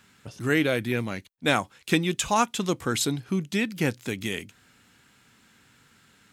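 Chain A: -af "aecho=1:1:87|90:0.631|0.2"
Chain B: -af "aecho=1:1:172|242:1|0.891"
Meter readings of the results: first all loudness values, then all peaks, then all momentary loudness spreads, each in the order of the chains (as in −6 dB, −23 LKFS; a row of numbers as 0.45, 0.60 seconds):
−25.0, −22.5 LKFS; −7.0, −5.0 dBFS; 8, 8 LU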